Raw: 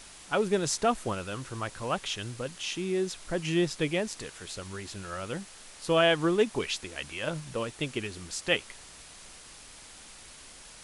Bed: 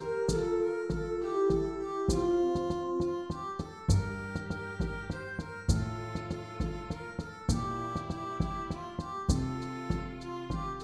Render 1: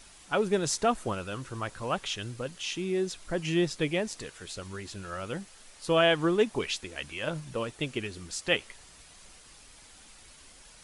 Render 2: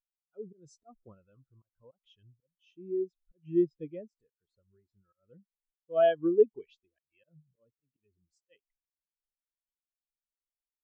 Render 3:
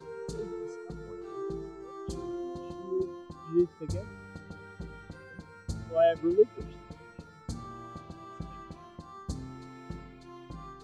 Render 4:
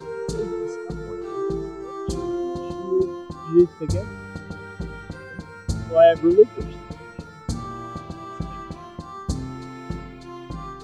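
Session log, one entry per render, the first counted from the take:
broadband denoise 6 dB, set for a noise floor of −50 dBFS
volume swells 161 ms; every bin expanded away from the loudest bin 2.5 to 1
mix in bed −9 dB
level +10.5 dB; brickwall limiter −3 dBFS, peak gain reduction 2 dB

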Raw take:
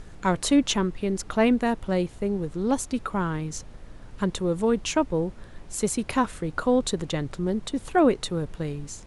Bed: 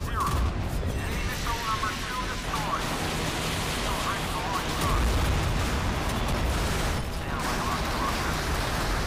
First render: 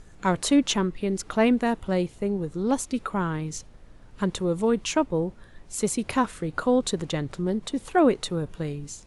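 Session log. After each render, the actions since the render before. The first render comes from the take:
noise reduction from a noise print 6 dB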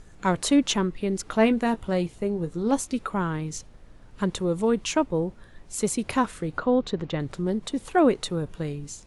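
0:01.26–0:02.95: double-tracking delay 18 ms −11 dB
0:06.58–0:07.20: high-frequency loss of the air 180 metres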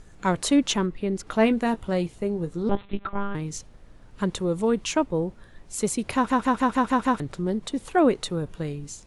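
0:00.86–0:01.27: high-shelf EQ 3,900 Hz −7.5 dB
0:02.69–0:03.35: one-pitch LPC vocoder at 8 kHz 200 Hz
0:06.15: stutter in place 0.15 s, 7 plays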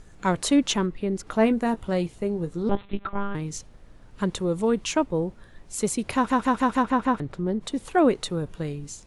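0:00.93–0:01.77: dynamic equaliser 3,200 Hz, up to −5 dB, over −43 dBFS, Q 0.88
0:06.82–0:07.60: high-shelf EQ 5,100 Hz → 3,300 Hz −12 dB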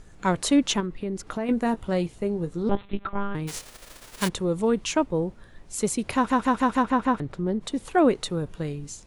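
0:00.80–0:01.49: downward compressor, threshold −25 dBFS
0:03.47–0:04.27: spectral envelope flattened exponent 0.3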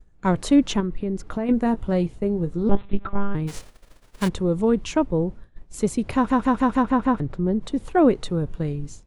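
downward expander −37 dBFS
spectral tilt −2 dB per octave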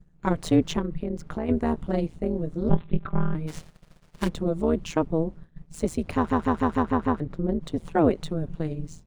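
running median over 3 samples
amplitude modulation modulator 160 Hz, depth 80%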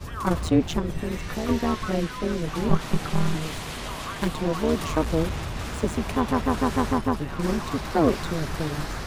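mix in bed −5 dB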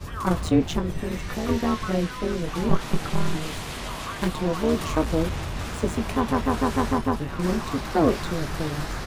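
double-tracking delay 22 ms −10.5 dB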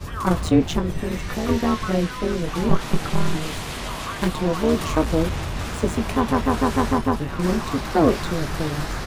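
level +3 dB
brickwall limiter −2 dBFS, peak gain reduction 1 dB

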